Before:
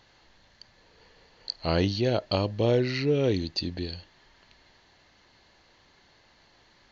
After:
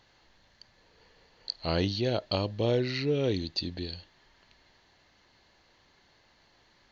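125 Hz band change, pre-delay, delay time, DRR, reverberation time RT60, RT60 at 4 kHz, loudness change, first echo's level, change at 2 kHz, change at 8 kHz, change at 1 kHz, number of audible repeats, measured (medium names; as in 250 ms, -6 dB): -3.5 dB, no reverb, no echo, no reverb, no reverb, no reverb, -3.0 dB, no echo, -3.0 dB, no reading, -3.5 dB, no echo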